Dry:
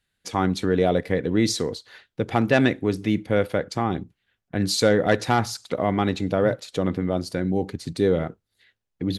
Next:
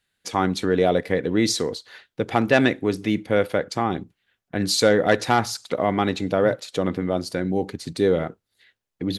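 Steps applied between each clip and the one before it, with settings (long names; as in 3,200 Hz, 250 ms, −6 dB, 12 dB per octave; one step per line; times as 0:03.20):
low-shelf EQ 170 Hz −8 dB
level +2.5 dB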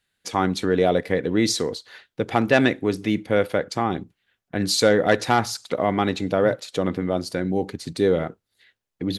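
no processing that can be heard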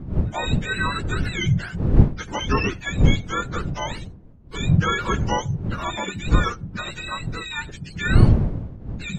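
frequency axis turned over on the octave scale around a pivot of 840 Hz
wind on the microphone 140 Hz −19 dBFS
level −3.5 dB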